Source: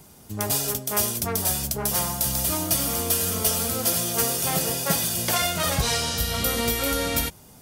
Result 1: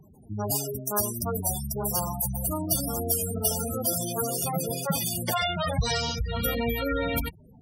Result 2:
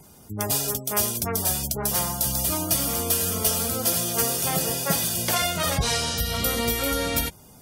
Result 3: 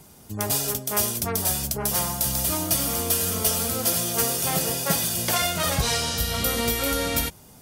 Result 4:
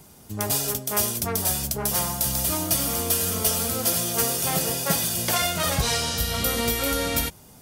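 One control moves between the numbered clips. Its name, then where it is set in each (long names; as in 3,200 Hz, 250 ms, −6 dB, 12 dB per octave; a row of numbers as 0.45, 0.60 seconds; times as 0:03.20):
gate on every frequency bin, under each frame's peak: −10, −25, −40, −50 decibels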